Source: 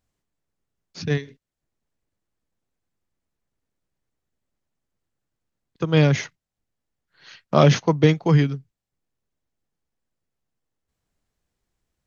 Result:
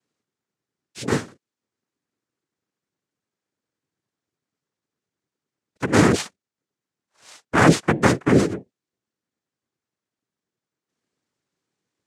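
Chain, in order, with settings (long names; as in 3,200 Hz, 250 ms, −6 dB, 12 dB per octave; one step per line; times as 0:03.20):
0:06.22–0:08.49: gain on one half-wave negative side −3 dB
cochlear-implant simulation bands 3
level +1 dB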